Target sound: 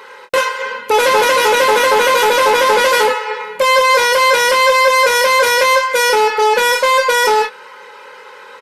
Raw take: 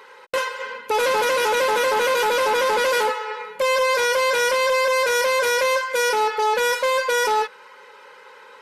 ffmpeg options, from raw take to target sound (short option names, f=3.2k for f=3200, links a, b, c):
-filter_complex "[0:a]asplit=2[a][b];[b]adelay=26,volume=-7dB[c];[a][c]amix=inputs=2:normalize=0,volume=8dB"